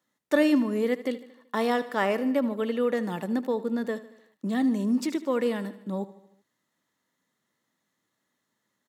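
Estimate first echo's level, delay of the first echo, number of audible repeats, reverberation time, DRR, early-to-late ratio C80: −16.0 dB, 76 ms, 4, no reverb audible, no reverb audible, no reverb audible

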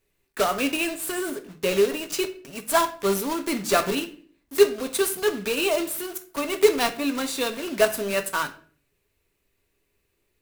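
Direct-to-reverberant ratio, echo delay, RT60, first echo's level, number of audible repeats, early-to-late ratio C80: 6.0 dB, no echo audible, 0.45 s, no echo audible, no echo audible, 18.0 dB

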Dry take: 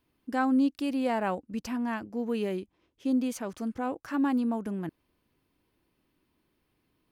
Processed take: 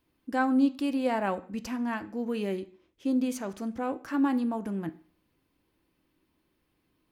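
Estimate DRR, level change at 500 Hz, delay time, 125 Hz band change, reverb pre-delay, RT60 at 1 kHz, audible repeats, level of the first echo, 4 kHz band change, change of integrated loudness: 9.0 dB, +0.5 dB, no echo audible, 0.0 dB, 3 ms, 0.50 s, no echo audible, no echo audible, +0.5 dB, +0.5 dB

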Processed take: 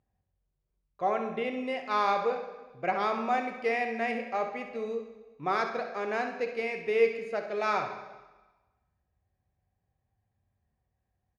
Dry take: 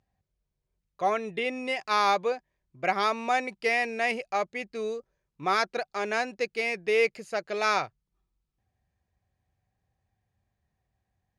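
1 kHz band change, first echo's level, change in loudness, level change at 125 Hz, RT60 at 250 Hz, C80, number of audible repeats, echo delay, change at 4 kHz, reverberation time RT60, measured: −2.0 dB, −10.5 dB, −2.5 dB, −1.0 dB, 1.2 s, 9.0 dB, 1, 66 ms, −8.5 dB, 1.2 s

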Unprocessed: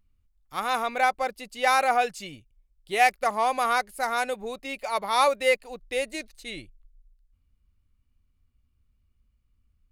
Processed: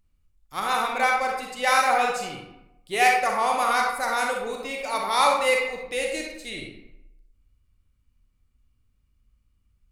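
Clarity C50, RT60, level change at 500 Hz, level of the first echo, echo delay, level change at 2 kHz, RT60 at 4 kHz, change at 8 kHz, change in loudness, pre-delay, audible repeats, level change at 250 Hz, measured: 2.0 dB, 0.90 s, +1.0 dB, no echo audible, no echo audible, +3.0 dB, 0.55 s, +4.5 dB, +2.0 dB, 34 ms, no echo audible, +2.5 dB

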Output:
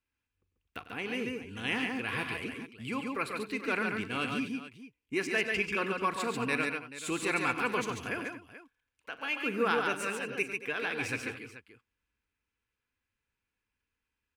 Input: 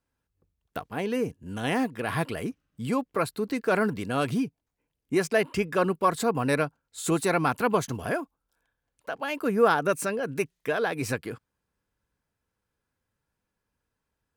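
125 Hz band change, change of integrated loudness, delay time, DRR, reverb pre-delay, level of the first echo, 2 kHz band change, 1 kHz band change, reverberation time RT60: −10.5 dB, −5.0 dB, 41 ms, no reverb audible, no reverb audible, −16.5 dB, 0.0 dB, −6.5 dB, no reverb audible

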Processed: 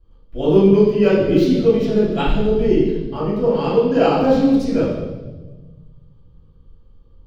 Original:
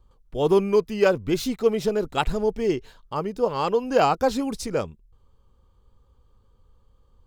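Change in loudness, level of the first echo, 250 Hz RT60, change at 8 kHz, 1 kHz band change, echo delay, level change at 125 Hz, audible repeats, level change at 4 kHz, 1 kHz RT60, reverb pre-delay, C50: +7.0 dB, no echo audible, 2.2 s, can't be measured, +1.0 dB, no echo audible, +11.5 dB, no echo audible, +2.5 dB, 1.0 s, 3 ms, 0.5 dB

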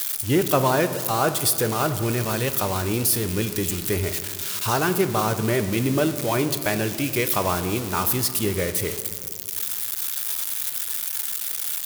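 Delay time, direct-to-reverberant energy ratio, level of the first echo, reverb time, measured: no echo audible, 9.0 dB, no echo audible, 2.0 s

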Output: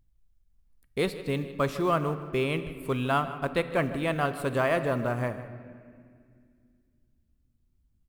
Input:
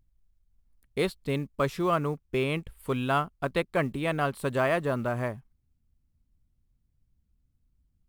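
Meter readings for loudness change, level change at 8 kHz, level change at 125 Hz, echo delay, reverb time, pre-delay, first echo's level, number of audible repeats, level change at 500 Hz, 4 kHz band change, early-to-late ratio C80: +0.5 dB, 0.0 dB, +0.5 dB, 156 ms, 2.1 s, 4 ms, −16.0 dB, 1, +0.5 dB, +0.5 dB, 11.5 dB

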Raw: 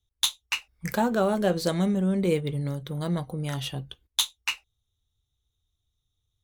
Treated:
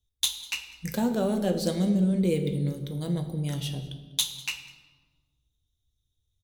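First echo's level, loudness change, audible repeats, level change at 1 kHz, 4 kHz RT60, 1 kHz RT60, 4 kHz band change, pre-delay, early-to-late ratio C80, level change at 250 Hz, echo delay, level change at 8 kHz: −22.0 dB, −1.0 dB, 1, −7.5 dB, 0.95 s, 1.3 s, −2.0 dB, 4 ms, 11.0 dB, +1.0 dB, 197 ms, 0.0 dB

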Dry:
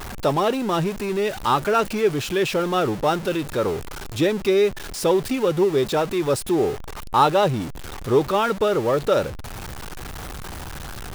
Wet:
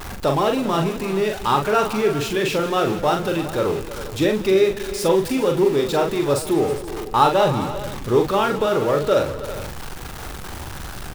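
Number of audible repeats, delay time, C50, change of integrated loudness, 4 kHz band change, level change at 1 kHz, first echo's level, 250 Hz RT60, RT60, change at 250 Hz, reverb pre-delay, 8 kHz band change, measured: 5, 42 ms, no reverb audible, +1.5 dB, +1.5 dB, +1.5 dB, −5.0 dB, no reverb audible, no reverb audible, +1.5 dB, no reverb audible, +1.5 dB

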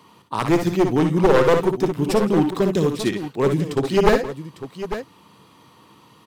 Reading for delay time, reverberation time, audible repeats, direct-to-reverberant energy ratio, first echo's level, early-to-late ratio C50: 58 ms, no reverb audible, 3, no reverb audible, −7.5 dB, no reverb audible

